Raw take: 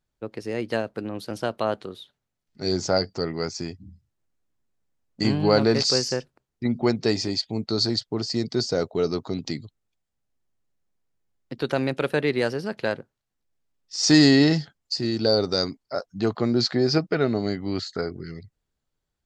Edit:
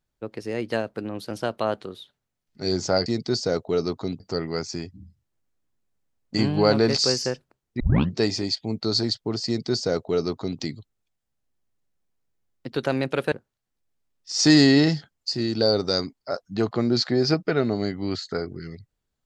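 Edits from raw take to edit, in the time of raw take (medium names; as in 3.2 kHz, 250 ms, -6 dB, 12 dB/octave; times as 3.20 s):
6.66 s: tape start 0.35 s
8.32–9.46 s: copy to 3.06 s
12.18–12.96 s: delete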